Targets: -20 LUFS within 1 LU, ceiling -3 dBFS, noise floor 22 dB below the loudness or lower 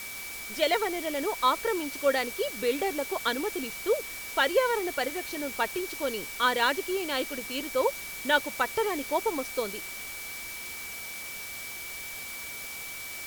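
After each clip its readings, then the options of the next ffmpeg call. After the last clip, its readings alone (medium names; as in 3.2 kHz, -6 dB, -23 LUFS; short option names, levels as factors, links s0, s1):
steady tone 2.3 kHz; tone level -40 dBFS; noise floor -39 dBFS; noise floor target -52 dBFS; loudness -29.5 LUFS; peak level -11.0 dBFS; loudness target -20.0 LUFS
-> -af "bandreject=f=2300:w=30"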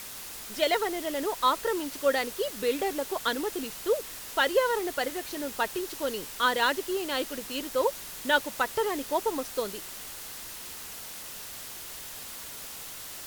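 steady tone not found; noise floor -42 dBFS; noise floor target -52 dBFS
-> -af "afftdn=nr=10:nf=-42"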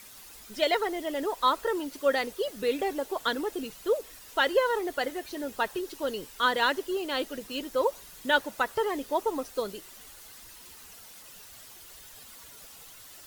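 noise floor -49 dBFS; noise floor target -52 dBFS
-> -af "afftdn=nr=6:nf=-49"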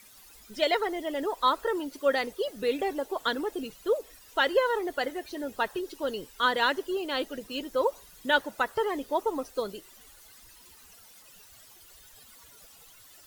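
noise floor -54 dBFS; loudness -29.5 LUFS; peak level -11.0 dBFS; loudness target -20.0 LUFS
-> -af "volume=2.99,alimiter=limit=0.708:level=0:latency=1"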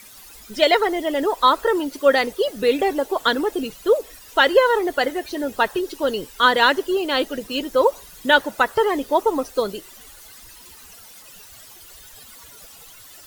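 loudness -20.0 LUFS; peak level -3.0 dBFS; noise floor -44 dBFS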